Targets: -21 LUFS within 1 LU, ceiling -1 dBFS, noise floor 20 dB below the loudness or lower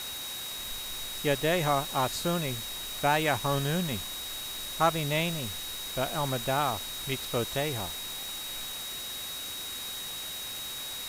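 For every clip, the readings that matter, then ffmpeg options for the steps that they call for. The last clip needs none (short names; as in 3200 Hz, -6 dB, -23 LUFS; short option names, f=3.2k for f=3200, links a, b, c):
steady tone 3800 Hz; tone level -38 dBFS; noise floor -38 dBFS; noise floor target -51 dBFS; loudness -30.5 LUFS; peak -11.5 dBFS; loudness target -21.0 LUFS
-> -af "bandreject=f=3.8k:w=30"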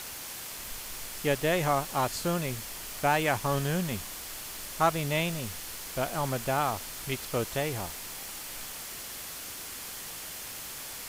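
steady tone none; noise floor -41 dBFS; noise floor target -52 dBFS
-> -af "afftdn=nr=11:nf=-41"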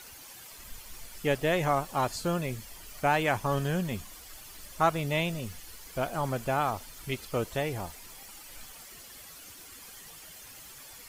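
noise floor -49 dBFS; noise floor target -51 dBFS
-> -af "afftdn=nr=6:nf=-49"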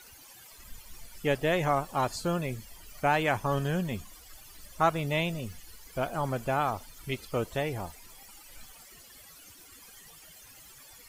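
noise floor -53 dBFS; loudness -30.5 LUFS; peak -12.0 dBFS; loudness target -21.0 LUFS
-> -af "volume=9.5dB"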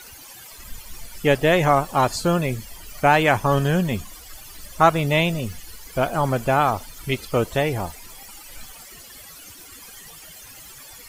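loudness -21.0 LUFS; peak -2.5 dBFS; noise floor -43 dBFS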